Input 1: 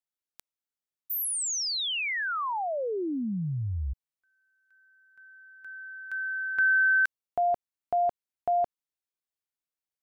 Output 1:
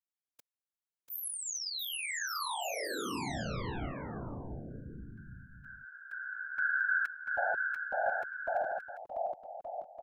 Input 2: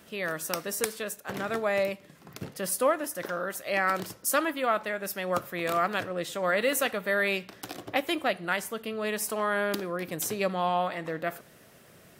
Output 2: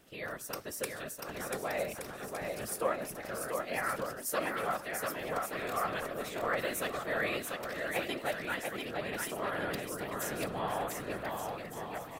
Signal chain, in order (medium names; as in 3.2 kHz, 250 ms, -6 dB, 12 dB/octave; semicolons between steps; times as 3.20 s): whisper effect; bouncing-ball echo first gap 690 ms, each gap 0.7×, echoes 5; trim -8.5 dB